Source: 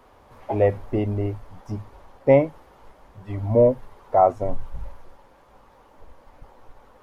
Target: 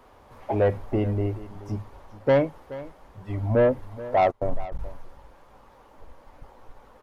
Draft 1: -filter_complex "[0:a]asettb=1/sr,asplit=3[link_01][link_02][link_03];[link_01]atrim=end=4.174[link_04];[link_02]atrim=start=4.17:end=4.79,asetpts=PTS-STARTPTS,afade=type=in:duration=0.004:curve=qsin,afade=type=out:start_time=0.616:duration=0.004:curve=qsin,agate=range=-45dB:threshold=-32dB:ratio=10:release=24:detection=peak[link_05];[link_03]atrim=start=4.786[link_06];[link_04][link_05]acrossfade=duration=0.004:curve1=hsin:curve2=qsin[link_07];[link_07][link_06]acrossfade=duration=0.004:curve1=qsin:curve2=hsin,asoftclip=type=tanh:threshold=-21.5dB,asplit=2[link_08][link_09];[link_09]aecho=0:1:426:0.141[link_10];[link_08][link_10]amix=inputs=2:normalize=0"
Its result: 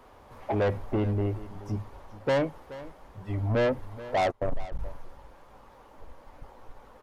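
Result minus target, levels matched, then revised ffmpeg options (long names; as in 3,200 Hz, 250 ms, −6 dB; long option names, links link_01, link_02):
soft clipping: distortion +7 dB
-filter_complex "[0:a]asettb=1/sr,asplit=3[link_01][link_02][link_03];[link_01]atrim=end=4.174[link_04];[link_02]atrim=start=4.17:end=4.79,asetpts=PTS-STARTPTS,afade=type=in:duration=0.004:curve=qsin,afade=type=out:start_time=0.616:duration=0.004:curve=qsin,agate=range=-45dB:threshold=-32dB:ratio=10:release=24:detection=peak[link_05];[link_03]atrim=start=4.786[link_06];[link_04][link_05]acrossfade=duration=0.004:curve1=hsin:curve2=qsin[link_07];[link_07][link_06]acrossfade=duration=0.004:curve1=qsin:curve2=hsin,asoftclip=type=tanh:threshold=-13.5dB,asplit=2[link_08][link_09];[link_09]aecho=0:1:426:0.141[link_10];[link_08][link_10]amix=inputs=2:normalize=0"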